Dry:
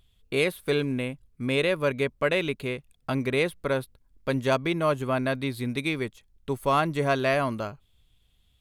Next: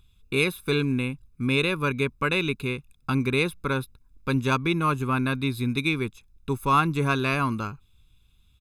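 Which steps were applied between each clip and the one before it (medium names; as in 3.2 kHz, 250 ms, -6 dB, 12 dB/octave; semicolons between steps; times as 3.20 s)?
comb 0.8 ms, depth 83%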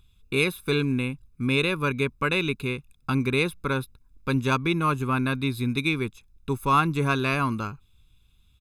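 no audible change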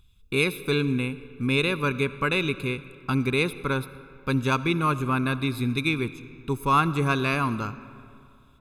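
algorithmic reverb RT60 2.5 s, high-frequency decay 0.6×, pre-delay 30 ms, DRR 15 dB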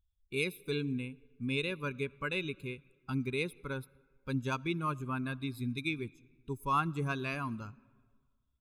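expander on every frequency bin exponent 1.5; trim -8 dB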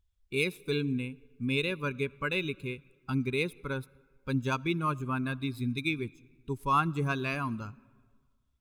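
median filter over 3 samples; trim +4 dB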